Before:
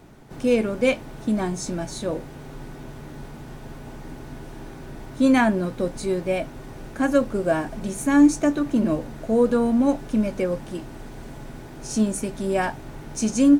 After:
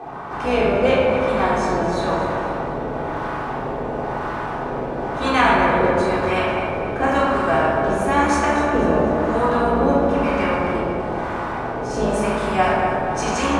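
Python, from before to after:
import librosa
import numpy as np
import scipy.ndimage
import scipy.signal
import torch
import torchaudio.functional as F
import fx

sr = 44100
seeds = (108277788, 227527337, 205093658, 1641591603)

y = fx.octave_divider(x, sr, octaves=2, level_db=3.0)
y = fx.wah_lfo(y, sr, hz=0.99, low_hz=480.0, high_hz=1100.0, q=4.0)
y = fx.echo_feedback(y, sr, ms=246, feedback_pct=42, wet_db=-12.5)
y = fx.room_shoebox(y, sr, seeds[0], volume_m3=1100.0, walls='mixed', distance_m=3.7)
y = fx.spectral_comp(y, sr, ratio=2.0)
y = y * 10.0 ** (6.5 / 20.0)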